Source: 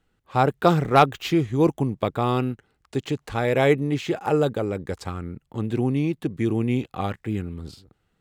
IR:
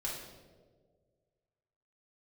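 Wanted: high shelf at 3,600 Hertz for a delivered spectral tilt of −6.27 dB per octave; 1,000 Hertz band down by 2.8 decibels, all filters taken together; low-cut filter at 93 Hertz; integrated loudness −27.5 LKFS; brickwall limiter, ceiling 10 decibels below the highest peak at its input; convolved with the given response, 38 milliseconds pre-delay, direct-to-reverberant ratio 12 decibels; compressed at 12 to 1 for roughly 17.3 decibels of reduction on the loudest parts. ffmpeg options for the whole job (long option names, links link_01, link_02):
-filter_complex "[0:a]highpass=93,equalizer=frequency=1000:width_type=o:gain=-3.5,highshelf=frequency=3600:gain=-6,acompressor=threshold=-31dB:ratio=12,alimiter=level_in=3dB:limit=-24dB:level=0:latency=1,volume=-3dB,asplit=2[link_01][link_02];[1:a]atrim=start_sample=2205,adelay=38[link_03];[link_02][link_03]afir=irnorm=-1:irlink=0,volume=-14dB[link_04];[link_01][link_04]amix=inputs=2:normalize=0,volume=11.5dB"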